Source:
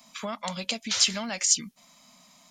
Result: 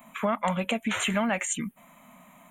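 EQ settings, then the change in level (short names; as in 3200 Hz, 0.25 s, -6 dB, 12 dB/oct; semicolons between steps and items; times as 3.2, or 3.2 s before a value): Butterworth band-stop 5000 Hz, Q 0.67; +7.5 dB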